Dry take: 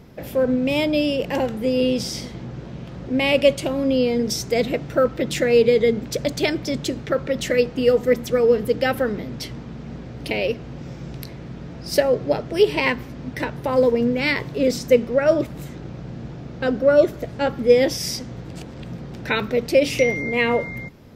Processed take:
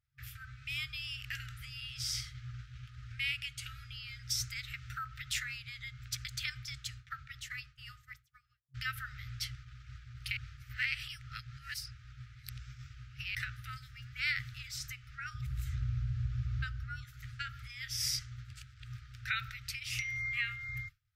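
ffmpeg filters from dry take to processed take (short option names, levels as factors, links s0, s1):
-filter_complex "[0:a]asettb=1/sr,asplit=3[s0][s1][s2];[s0]atrim=end=15.344[s3];[s1]atrim=start=15.34:end=17.04,asetpts=PTS-STARTPTS,afade=t=in:d=0.004:c=qsin,afade=t=out:st=1.696:d=0.004:c=qsin,equalizer=f=67:t=o:w=2.8:g=14.5[s4];[s2]atrim=start=17.036[s5];[s3][s4]acrossfade=d=0.004:c1=hsin:c2=qsin[s6];[s6][s5]acrossfade=d=0.004:c1=qsin:c2=hsin,asplit=4[s7][s8][s9][s10];[s7]atrim=end=8.74,asetpts=PTS-STARTPTS,afade=t=out:st=5.69:d=3.05[s11];[s8]atrim=start=8.74:end=10.372,asetpts=PTS-STARTPTS,afade=t=in:d=0.004:c=hsin[s12];[s9]atrim=start=10.368:end=13.352,asetpts=PTS-STARTPTS,areverse[s13];[s10]atrim=start=13.348[s14];[s11][s12]concat=n=2:v=0:a=1[s15];[s15][s13]acrossfade=d=0.004:c1=hsin:c2=hsin[s16];[s16][s14]acrossfade=d=0.004:c1=hsin:c2=hsin,agate=range=0.0224:threshold=0.0398:ratio=3:detection=peak,acompressor=threshold=0.0562:ratio=4,afftfilt=real='re*(1-between(b*sr/4096,130,1200))':imag='im*(1-between(b*sr/4096,130,1200))':win_size=4096:overlap=0.75,volume=0.631"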